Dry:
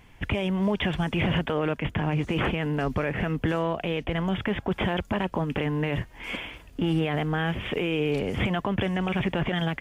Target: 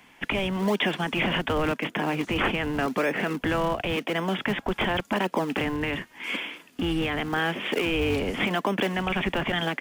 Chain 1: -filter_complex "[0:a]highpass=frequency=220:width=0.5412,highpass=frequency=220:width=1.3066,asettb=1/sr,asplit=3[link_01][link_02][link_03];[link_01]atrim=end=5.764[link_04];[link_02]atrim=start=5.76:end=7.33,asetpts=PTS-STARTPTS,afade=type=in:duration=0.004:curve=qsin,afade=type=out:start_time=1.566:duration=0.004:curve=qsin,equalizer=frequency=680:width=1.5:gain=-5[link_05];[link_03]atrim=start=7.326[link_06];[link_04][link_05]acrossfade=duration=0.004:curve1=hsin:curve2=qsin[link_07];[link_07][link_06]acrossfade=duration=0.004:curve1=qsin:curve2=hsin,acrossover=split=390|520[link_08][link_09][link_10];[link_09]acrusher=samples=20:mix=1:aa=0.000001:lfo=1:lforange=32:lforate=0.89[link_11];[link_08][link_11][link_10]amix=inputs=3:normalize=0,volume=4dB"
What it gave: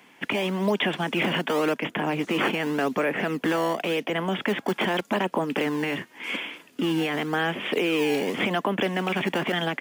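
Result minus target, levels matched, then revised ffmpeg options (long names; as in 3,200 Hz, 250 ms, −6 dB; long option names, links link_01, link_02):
sample-and-hold swept by an LFO: distortion −18 dB
-filter_complex "[0:a]highpass=frequency=220:width=0.5412,highpass=frequency=220:width=1.3066,asettb=1/sr,asplit=3[link_01][link_02][link_03];[link_01]atrim=end=5.764[link_04];[link_02]atrim=start=5.76:end=7.33,asetpts=PTS-STARTPTS,afade=type=in:duration=0.004:curve=qsin,afade=type=out:start_time=1.566:duration=0.004:curve=qsin,equalizer=frequency=680:width=1.5:gain=-5[link_05];[link_03]atrim=start=7.326[link_06];[link_04][link_05]acrossfade=duration=0.004:curve1=hsin:curve2=qsin[link_07];[link_07][link_06]acrossfade=duration=0.004:curve1=qsin:curve2=hsin,acrossover=split=390|520[link_08][link_09][link_10];[link_09]acrusher=samples=72:mix=1:aa=0.000001:lfo=1:lforange=115:lforate=0.89[link_11];[link_08][link_11][link_10]amix=inputs=3:normalize=0,volume=4dB"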